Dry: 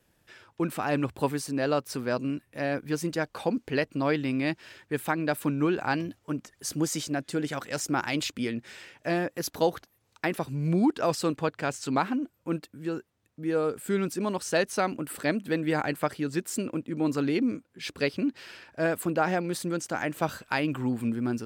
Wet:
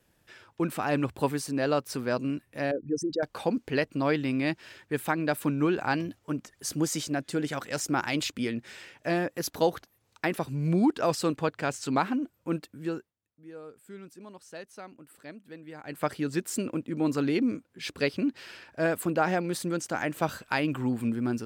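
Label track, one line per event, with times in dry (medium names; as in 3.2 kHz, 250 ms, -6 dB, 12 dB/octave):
2.710000	3.230000	resonances exaggerated exponent 3
12.900000	16.080000	dip -17.5 dB, fades 0.24 s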